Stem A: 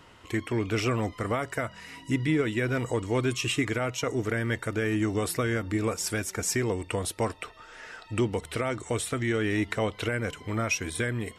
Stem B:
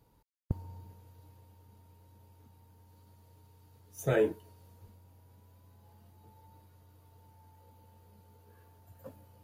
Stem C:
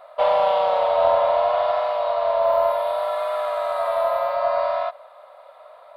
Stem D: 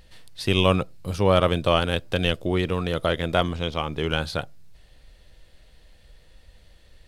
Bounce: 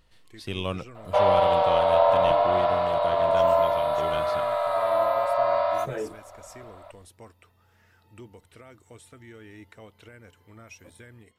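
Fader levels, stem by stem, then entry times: -19.5, -5.5, -1.5, -11.0 dB; 0.00, 1.80, 0.95, 0.00 s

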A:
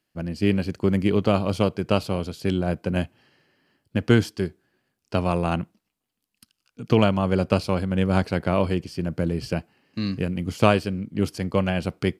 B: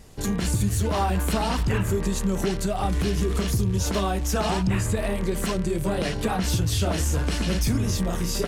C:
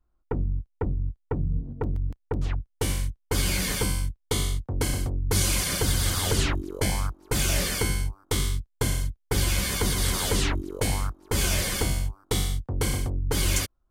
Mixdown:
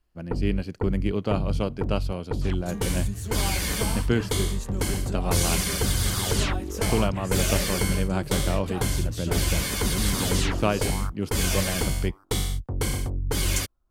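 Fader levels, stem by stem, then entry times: -6.0, -9.5, -0.5 dB; 0.00, 2.45, 0.00 s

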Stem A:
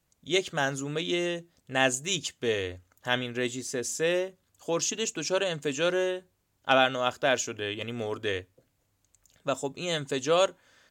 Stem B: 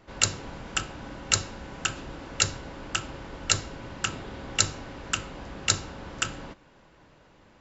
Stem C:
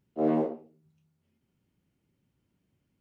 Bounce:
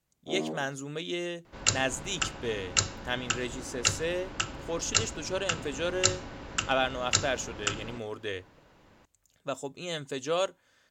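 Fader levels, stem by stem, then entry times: -5.0, -2.0, -9.0 dB; 0.00, 1.45, 0.10 s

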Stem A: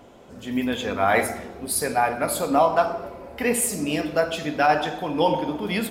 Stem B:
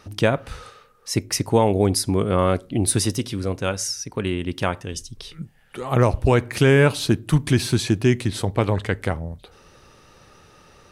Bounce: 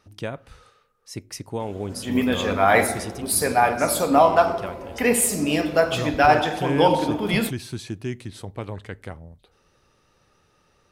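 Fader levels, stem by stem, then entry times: +3.0, -12.0 dB; 1.60, 0.00 s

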